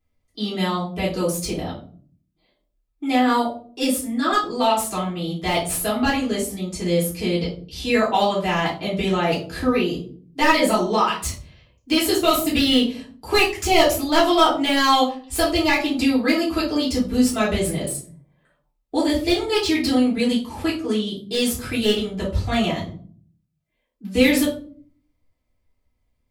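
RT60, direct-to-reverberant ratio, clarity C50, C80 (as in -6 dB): 0.45 s, -10.0 dB, 6.5 dB, 12.0 dB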